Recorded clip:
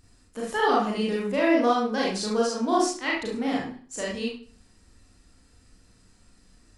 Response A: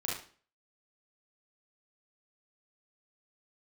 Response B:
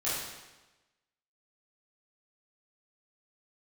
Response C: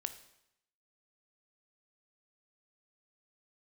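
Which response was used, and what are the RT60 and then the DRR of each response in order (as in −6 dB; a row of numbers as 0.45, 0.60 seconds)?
A; 0.45, 1.1, 0.80 seconds; −5.0, −11.0, 9.5 decibels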